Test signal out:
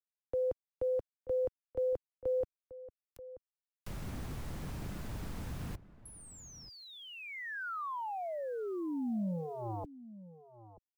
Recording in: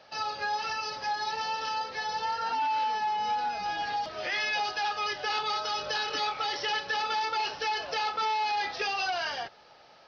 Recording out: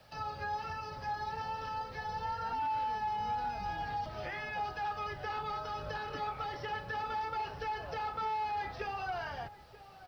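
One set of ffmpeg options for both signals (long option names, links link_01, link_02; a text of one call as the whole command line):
ffmpeg -i in.wav -filter_complex "[0:a]acrossover=split=130|650|1900[link_01][link_02][link_03][link_04];[link_01]aeval=exprs='0.0251*sin(PI/2*6.31*val(0)/0.0251)':channel_layout=same[link_05];[link_04]acompressor=threshold=-48dB:ratio=10[link_06];[link_05][link_02][link_03][link_06]amix=inputs=4:normalize=0,acrusher=bits=10:mix=0:aa=0.000001,asplit=2[link_07][link_08];[link_08]adelay=932.9,volume=-16dB,highshelf=frequency=4000:gain=-21[link_09];[link_07][link_09]amix=inputs=2:normalize=0,volume=-5.5dB" out.wav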